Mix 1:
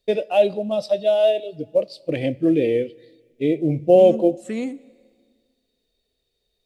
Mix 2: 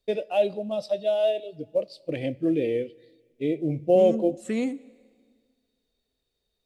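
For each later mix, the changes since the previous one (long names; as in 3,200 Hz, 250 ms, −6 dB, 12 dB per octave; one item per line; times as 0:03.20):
first voice −6.0 dB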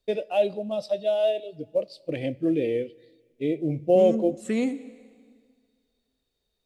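second voice: send +8.0 dB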